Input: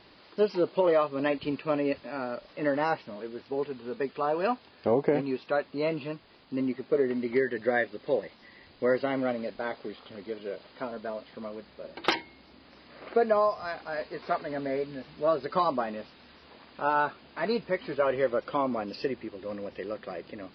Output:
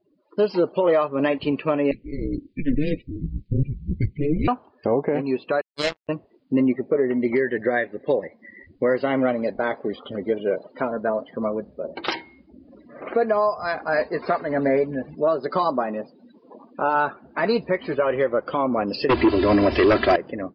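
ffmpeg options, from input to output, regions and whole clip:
-filter_complex "[0:a]asettb=1/sr,asplit=3[a][b][c];[a]atrim=end=1.914[d];[b]atrim=start=1.91:end=4.48,asetpts=PTS-STARTPTS,afade=t=in:d=0.004:c=qsin,afade=t=out:st=2.566:d=0.004:c=qsin,afreqshift=-300,aeval=exprs='(tanh(22.4*val(0)+0.7)-tanh(0.7))/22.4':c=same,asuperstop=centerf=970:order=8:qfactor=0.64[e];[c]atrim=start=4.476[f];[d][e]acrossfade=d=0.004:c1=hsin:c2=qsin[g];[g][f]acrossfade=d=0.004:c1=qsin:c2=hsin,asettb=1/sr,asplit=3[h][i][j];[h]atrim=end=5.614[k];[i]atrim=start=5.61:end=6.09,asetpts=PTS-STARTPTS,afade=t=in:d=0.004:c=qsin,afade=t=out:st=0.476:d=0.004:c=qsin,bass=f=250:g=-6,treble=f=4k:g=13,acrusher=bits=3:mix=0:aa=0.5[l];[j]atrim=start=6.086[m];[k][l]acrossfade=d=0.004:c1=hsin:c2=qsin[n];[n][m]acrossfade=d=0.004:c1=qsin:c2=hsin,asettb=1/sr,asplit=3[o][p][q];[o]atrim=end=15.154[r];[p]atrim=start=15.15:end=16.95,asetpts=PTS-STARTPTS,afade=t=in:d=0.004:c=qsin,afade=t=out:st=1.796:d=0.004:c=qsin,highpass=140,equalizer=f=1.9k:w=1.1:g=-3[s];[q]atrim=start=16.946[t];[r][s]acrossfade=d=0.004:c1=hsin:c2=qsin[u];[u][t]acrossfade=d=0.004:c1=qsin:c2=hsin,asettb=1/sr,asplit=3[v][w][x];[v]atrim=end=19.094[y];[w]atrim=start=19.09:end=20.16,asetpts=PTS-STARTPTS,afade=t=in:d=0.004:c=qsin,afade=t=out:st=1.066:d=0.004:c=qsin,equalizer=f=75:w=1.3:g=6.5,aecho=1:1:3:0.81,atrim=end_sample=47187,aeval=exprs='0.106*sin(PI/2*2.82*val(0)/0.106)':c=same[z];[x]atrim=start=20.156[aa];[y][z]acrossfade=d=0.004:c1=hsin:c2=qsin[ab];[ab][aa]acrossfade=d=0.004:c1=qsin:c2=hsin,afftdn=nr=35:nf=-47,dynaudnorm=f=250:g=3:m=14dB,alimiter=limit=-11dB:level=0:latency=1:release=391"

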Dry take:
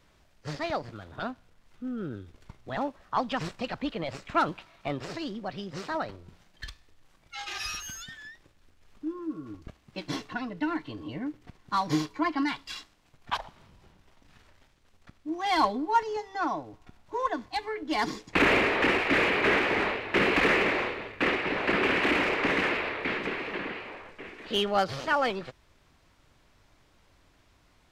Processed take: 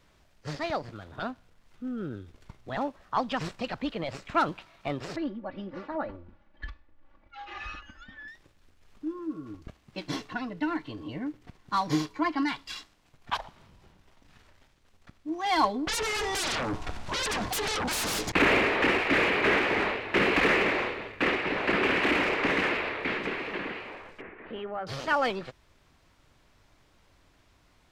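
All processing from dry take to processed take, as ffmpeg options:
-filter_complex "[0:a]asettb=1/sr,asplit=3[a][b][c];[a]atrim=end=5.164[d];[b]atrim=start=5.16:end=8.28,asetpts=PTS-STARTPTS,afade=t=in:d=0.004:c=qsin,afade=t=out:st=3.116:d=0.004:c=qsin,lowpass=1.7k,aecho=1:1:3.5:0.92,atrim=end_sample=137592,tremolo=f=2:d=0.41[e];[c]atrim=start=8.276[f];[d][e]acrossfade=d=0.004:c1=hsin:c2=qsin[g];[g][f]acrossfade=d=0.004:c1=qsin:c2=hsin,asettb=1/sr,asplit=3[h][i][j];[h]atrim=end=15.874[k];[i]atrim=start=15.87:end=18.32,asetpts=PTS-STARTPTS,afade=t=in:d=0.004:c=qsin,afade=t=out:st=2.446:d=0.004:c=qsin,lowpass=10k,acompressor=threshold=-35dB:ratio=4:attack=3.2:release=140:knee=1:detection=peak,aeval=exprs='0.0447*sin(PI/2*7.94*val(0)/0.0447)':c=same[l];[j]atrim=start=18.316[m];[k][l]acrossfade=d=0.004:c1=hsin:c2=qsin[n];[n][m]acrossfade=d=0.004:c1=qsin:c2=hsin,asettb=1/sr,asplit=3[o][p][q];[o]atrim=end=24.214[r];[p]atrim=start=24.21:end=24.87,asetpts=PTS-STARTPTS,afade=t=in:d=0.004:c=qsin,afade=t=out:st=0.656:d=0.004:c=qsin,lowpass=f=2.1k:w=0.5412,lowpass=f=2.1k:w=1.3066,bandreject=f=50:t=h:w=6,bandreject=f=100:t=h:w=6,bandreject=f=150:t=h:w=6,bandreject=f=200:t=h:w=6,bandreject=f=250:t=h:w=6,bandreject=f=300:t=h:w=6,bandreject=f=350:t=h:w=6,bandreject=f=400:t=h:w=6,acompressor=threshold=-38dB:ratio=2:attack=3.2:release=140:knee=1:detection=peak[s];[q]atrim=start=24.866[t];[r][s]acrossfade=d=0.004:c1=hsin:c2=qsin[u];[u][t]acrossfade=d=0.004:c1=qsin:c2=hsin"

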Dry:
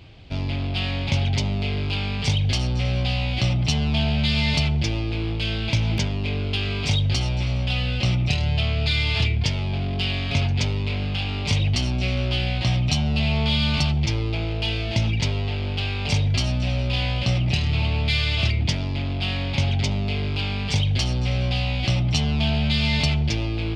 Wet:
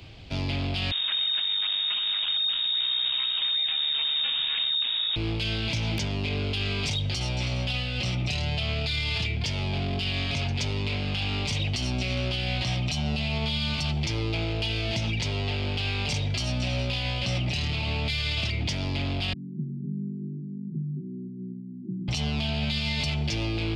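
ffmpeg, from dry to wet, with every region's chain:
-filter_complex "[0:a]asettb=1/sr,asplit=3[a][b][c];[a]atrim=end=0.914[d];[b]atrim=start=0.91:end=5.16,asetpts=PTS-STARTPTS,afade=t=in:d=0.004:c=qsin,afade=t=out:st=4.246:d=0.004:c=qsin,acrusher=samples=19:mix=1:aa=0.000001:lfo=1:lforange=19:lforate=3.8,lowpass=f=3.2k:t=q:w=0.5098,lowpass=f=3.2k:t=q:w=0.6013,lowpass=f=3.2k:t=q:w=0.9,lowpass=f=3.2k:t=q:w=2.563,afreqshift=-3800[e];[c]atrim=start=5.156[f];[d][e]acrossfade=d=0.004:c1=hsin:c2=qsin[g];[g][f]acrossfade=d=0.004:c1=qsin:c2=hsin,asettb=1/sr,asplit=3[h][i][j];[h]atrim=end=19.334[k];[i]atrim=start=19.33:end=22.08,asetpts=PTS-STARTPTS,afade=t=in:d=0.004:c=qsin,afade=t=out:st=2.746:d=0.004:c=qsin,asuperpass=centerf=230:order=20:qfactor=1,equalizer=f=280:w=4:g=-10[l];[j]atrim=start=22.076[m];[k][l]acrossfade=d=0.004:c1=hsin:c2=qsin[n];[n][m]acrossfade=d=0.004:c1=qsin:c2=hsin,acrossover=split=89|200[o][p][q];[o]acompressor=threshold=-35dB:ratio=4[r];[p]acompressor=threshold=-32dB:ratio=4[s];[q]acompressor=threshold=-28dB:ratio=4[t];[r][s][t]amix=inputs=3:normalize=0,highshelf=f=3.9k:g=6.5,alimiter=limit=-19dB:level=0:latency=1:release=22"

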